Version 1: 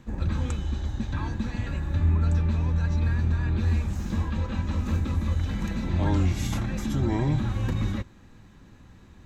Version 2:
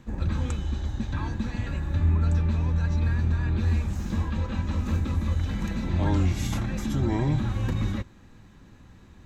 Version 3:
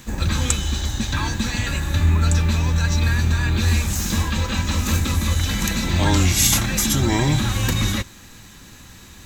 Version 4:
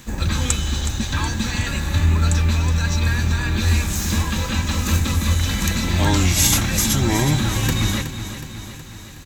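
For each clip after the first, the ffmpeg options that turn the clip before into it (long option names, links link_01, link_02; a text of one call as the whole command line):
ffmpeg -i in.wav -af anull out.wav
ffmpeg -i in.wav -af "crystalizer=i=9:c=0,volume=5dB" out.wav
ffmpeg -i in.wav -af "aecho=1:1:369|738|1107|1476|1845|2214|2583:0.282|0.163|0.0948|0.055|0.0319|0.0185|0.0107" out.wav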